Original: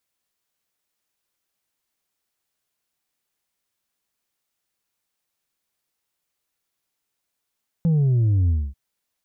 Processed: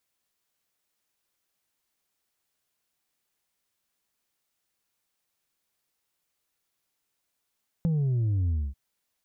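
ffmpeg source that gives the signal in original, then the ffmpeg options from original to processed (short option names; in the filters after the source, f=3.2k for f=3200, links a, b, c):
-f lavfi -i "aevalsrc='0.158*clip((0.89-t)/0.25,0,1)*tanh(1.41*sin(2*PI*170*0.89/log(65/170)*(exp(log(65/170)*t/0.89)-1)))/tanh(1.41)':d=0.89:s=44100"
-af "acompressor=threshold=-26dB:ratio=4"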